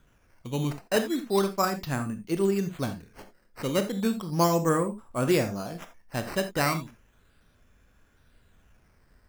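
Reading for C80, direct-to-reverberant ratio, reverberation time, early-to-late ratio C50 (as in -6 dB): 17.0 dB, 8.0 dB, not exponential, 12.0 dB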